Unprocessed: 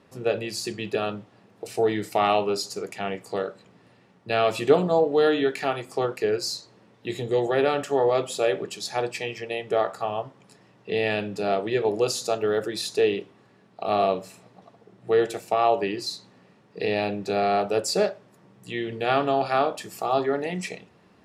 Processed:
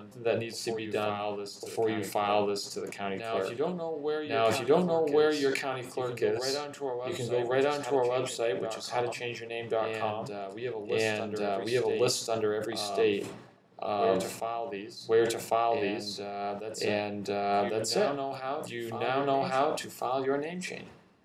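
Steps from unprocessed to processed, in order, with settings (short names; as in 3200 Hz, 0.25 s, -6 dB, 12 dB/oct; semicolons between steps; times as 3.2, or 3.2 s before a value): tremolo 2.9 Hz, depth 41%; reverse echo 1.099 s -7 dB; sustainer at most 75 dB/s; gain -4 dB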